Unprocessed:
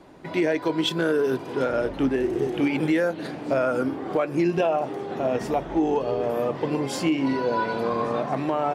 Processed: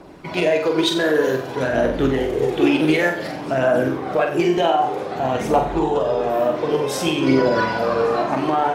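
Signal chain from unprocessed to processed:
formants moved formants +2 semitones
phase shifter 0.54 Hz, delay 3.3 ms, feedback 39%
flutter between parallel walls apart 7.8 metres, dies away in 0.49 s
level +3.5 dB

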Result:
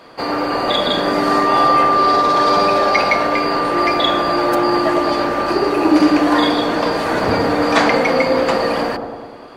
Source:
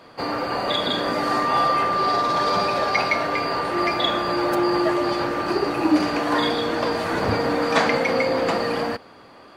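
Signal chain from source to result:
parametric band 110 Hz −5.5 dB 1.3 octaves
on a send: delay with a low-pass on its return 101 ms, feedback 66%, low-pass 800 Hz, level −3.5 dB
on the sum: level +5 dB

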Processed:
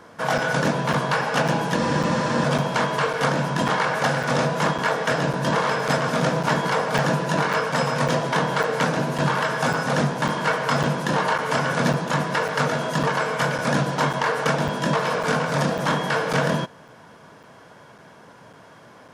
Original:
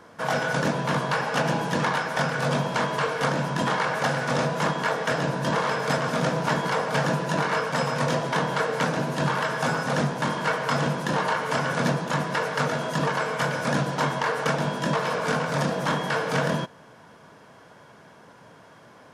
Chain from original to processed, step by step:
frozen spectrum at 0:01.79, 0.66 s
regular buffer underruns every 0.55 s, samples 256, zero, from 0:00.38
level +3 dB

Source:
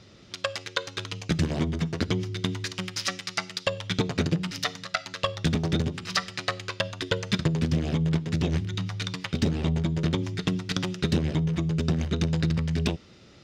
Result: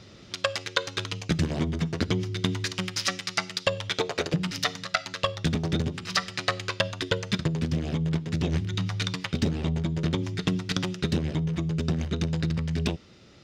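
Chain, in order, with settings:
0:03.89–0:04.34: low shelf with overshoot 320 Hz −13 dB, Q 1.5
speech leveller within 3 dB 0.5 s

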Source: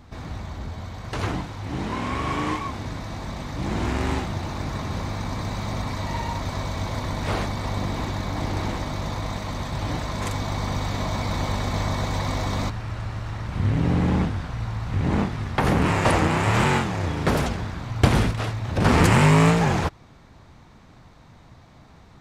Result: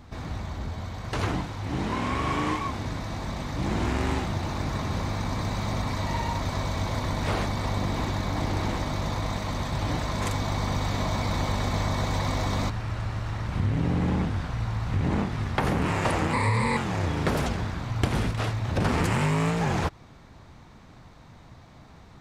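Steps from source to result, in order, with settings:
0:16.33–0:16.77: EQ curve with evenly spaced ripples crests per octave 0.95, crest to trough 17 dB
downward compressor 6 to 1, threshold −21 dBFS, peak gain reduction 10.5 dB

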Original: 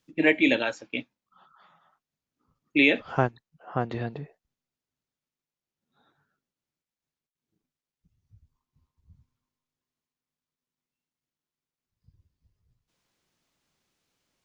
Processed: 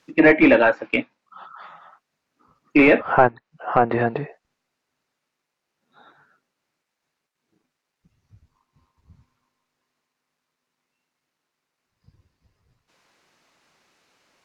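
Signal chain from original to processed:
mid-hump overdrive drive 18 dB, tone 2,300 Hz, clips at −7 dBFS
parametric band 3,300 Hz −4.5 dB 0.27 octaves
treble cut that deepens with the level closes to 1,700 Hz, closed at −21.5 dBFS
level +6.5 dB

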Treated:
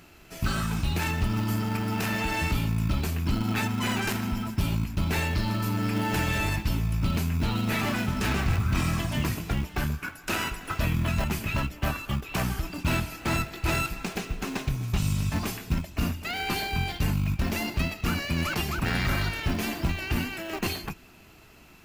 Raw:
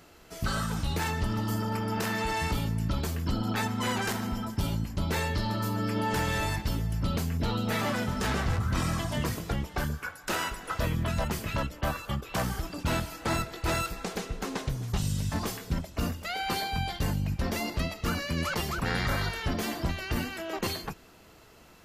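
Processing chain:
in parallel at −6 dB: sample-rate reduction 1,200 Hz
on the sum: thirty-one-band graphic EQ 500 Hz −9 dB, 2,500 Hz +8 dB, 12,500 Hz +3 dB

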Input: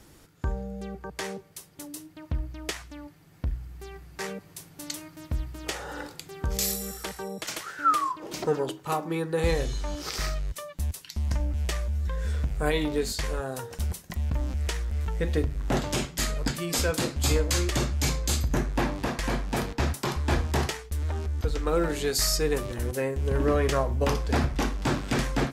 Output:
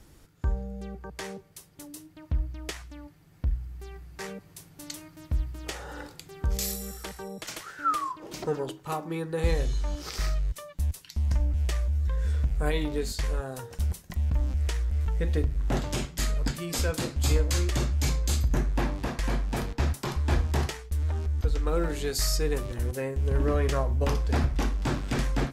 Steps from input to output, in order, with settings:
low-shelf EQ 91 Hz +9.5 dB
level −4 dB

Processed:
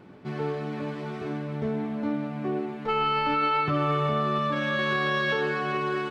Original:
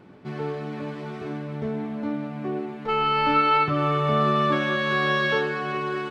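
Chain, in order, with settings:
brickwall limiter −17.5 dBFS, peak gain reduction 7 dB
0:04.38–0:04.79: notch comb filter 360 Hz

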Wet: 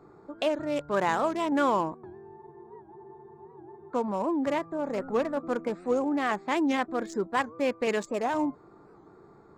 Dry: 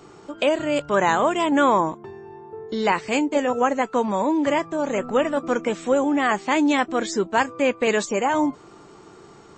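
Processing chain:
adaptive Wiener filter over 15 samples
frozen spectrum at 0:02.40, 1.51 s
wow of a warped record 78 rpm, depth 160 cents
level −6.5 dB

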